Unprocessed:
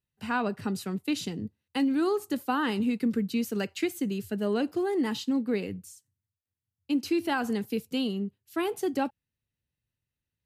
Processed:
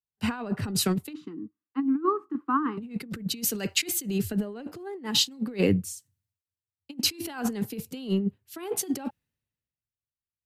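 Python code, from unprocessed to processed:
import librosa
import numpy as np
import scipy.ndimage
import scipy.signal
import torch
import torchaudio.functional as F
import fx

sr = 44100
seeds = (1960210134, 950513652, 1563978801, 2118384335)

y = fx.double_bandpass(x, sr, hz=600.0, octaves=1.9, at=(1.12, 2.77), fade=0.02)
y = fx.over_compress(y, sr, threshold_db=-33.0, ratio=-0.5)
y = fx.band_widen(y, sr, depth_pct=70)
y = y * librosa.db_to_amplitude(5.0)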